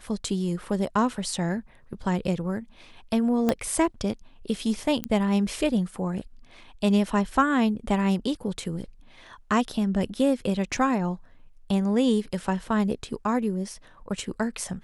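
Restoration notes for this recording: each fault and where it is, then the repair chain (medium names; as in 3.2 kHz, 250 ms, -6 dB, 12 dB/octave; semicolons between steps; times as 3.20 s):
3.49 s: pop -10 dBFS
5.04 s: pop -12 dBFS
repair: de-click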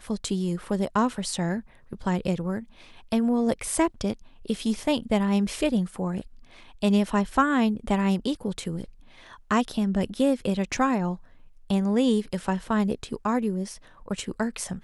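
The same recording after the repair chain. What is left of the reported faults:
3.49 s: pop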